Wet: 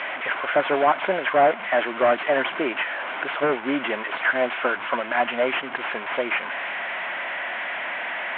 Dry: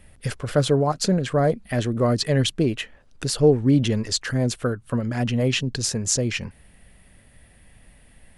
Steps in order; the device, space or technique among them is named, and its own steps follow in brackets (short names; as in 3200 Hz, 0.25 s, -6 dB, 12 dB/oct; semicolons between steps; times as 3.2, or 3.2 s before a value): digital answering machine (BPF 360–3200 Hz; delta modulation 16 kbps, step -34 dBFS; speaker cabinet 420–3900 Hz, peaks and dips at 460 Hz -8 dB, 680 Hz +6 dB, 990 Hz +6 dB, 1500 Hz +7 dB, 2200 Hz +6 dB, 3200 Hz +4 dB); gain +7 dB